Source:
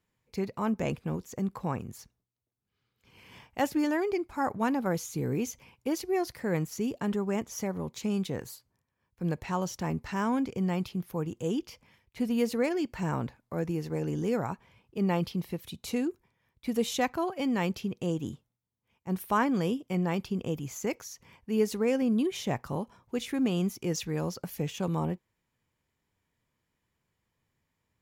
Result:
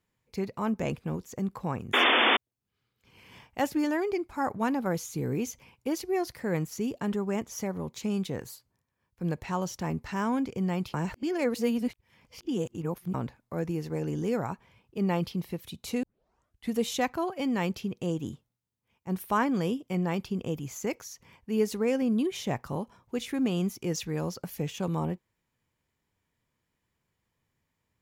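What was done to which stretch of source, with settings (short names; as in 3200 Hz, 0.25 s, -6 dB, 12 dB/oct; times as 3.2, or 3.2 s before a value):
1.93–2.37 painted sound noise 220–3600 Hz -22 dBFS
10.94–13.14 reverse
16.03 tape start 0.70 s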